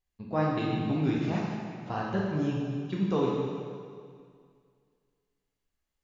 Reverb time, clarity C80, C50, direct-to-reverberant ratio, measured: 2.1 s, 1.0 dB, -1.0 dB, -4.0 dB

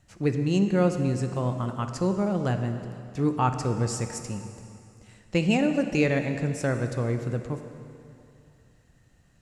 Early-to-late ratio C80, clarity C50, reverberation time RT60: 8.5 dB, 7.5 dB, 2.5 s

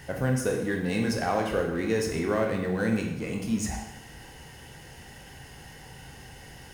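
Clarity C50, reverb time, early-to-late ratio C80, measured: 4.5 dB, 0.90 s, 7.5 dB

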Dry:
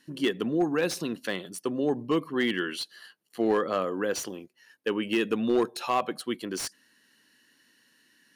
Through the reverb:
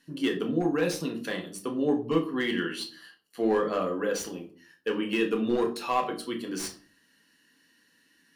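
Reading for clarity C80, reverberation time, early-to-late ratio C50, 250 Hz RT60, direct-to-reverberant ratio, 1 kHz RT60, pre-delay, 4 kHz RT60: 16.5 dB, 0.45 s, 12.0 dB, 0.60 s, 1.0 dB, 0.40 s, 4 ms, 0.30 s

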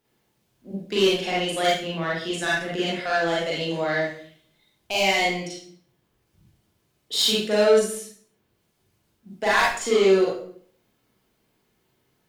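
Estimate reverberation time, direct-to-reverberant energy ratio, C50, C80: 0.55 s, -6.0 dB, -0.5 dB, 6.0 dB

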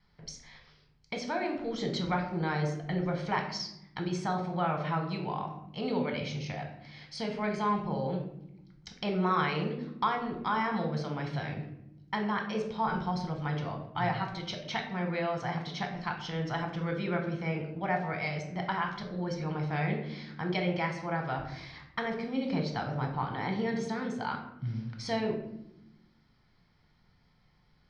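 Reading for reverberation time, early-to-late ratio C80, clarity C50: 0.85 s, 10.0 dB, 7.0 dB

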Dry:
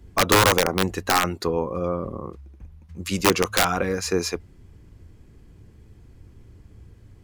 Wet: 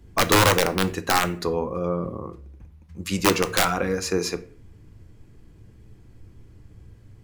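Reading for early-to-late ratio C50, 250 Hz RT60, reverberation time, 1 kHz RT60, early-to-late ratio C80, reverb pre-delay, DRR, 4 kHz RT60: 17.0 dB, 0.75 s, 0.50 s, 0.40 s, 20.5 dB, 6 ms, 9.5 dB, 0.35 s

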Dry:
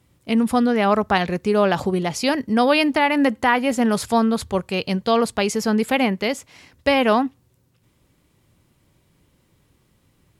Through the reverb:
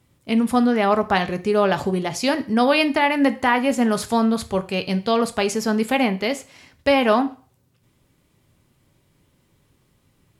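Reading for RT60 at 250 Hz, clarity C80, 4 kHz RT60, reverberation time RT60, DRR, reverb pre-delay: 0.35 s, 21.5 dB, 0.40 s, 0.40 s, 9.5 dB, 3 ms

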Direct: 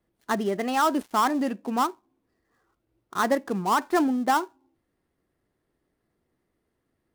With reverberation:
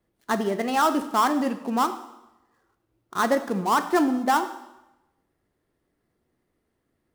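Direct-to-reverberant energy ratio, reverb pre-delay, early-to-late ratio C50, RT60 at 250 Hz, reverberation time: 9.5 dB, 6 ms, 12.0 dB, 0.95 s, 0.95 s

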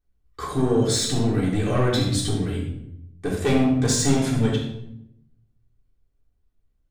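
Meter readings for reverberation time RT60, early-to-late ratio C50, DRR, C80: 0.80 s, 2.5 dB, -6.0 dB, 5.5 dB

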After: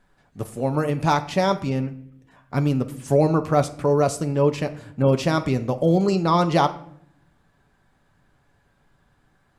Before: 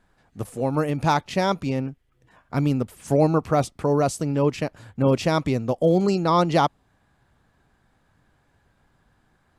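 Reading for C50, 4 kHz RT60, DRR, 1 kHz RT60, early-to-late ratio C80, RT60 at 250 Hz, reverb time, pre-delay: 15.0 dB, 0.45 s, 7.0 dB, 0.55 s, 18.0 dB, 0.95 s, 0.65 s, 5 ms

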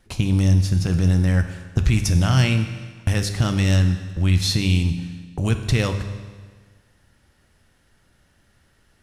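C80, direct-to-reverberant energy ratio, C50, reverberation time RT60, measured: 10.5 dB, 7.0 dB, 9.0 dB, 1.5 s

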